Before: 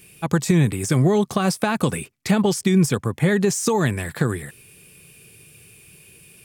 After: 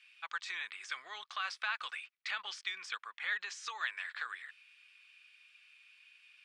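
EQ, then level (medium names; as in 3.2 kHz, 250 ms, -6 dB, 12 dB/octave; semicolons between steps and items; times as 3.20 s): resonant high-pass 1.3 kHz, resonance Q 2; low-pass 3.7 kHz 24 dB/octave; differentiator; 0.0 dB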